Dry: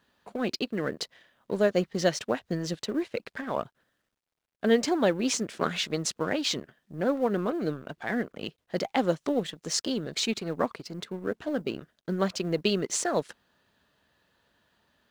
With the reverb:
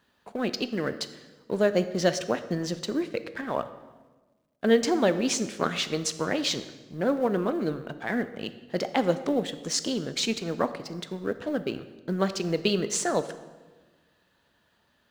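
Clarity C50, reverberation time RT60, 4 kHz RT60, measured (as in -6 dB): 12.5 dB, 1.3 s, 1.0 s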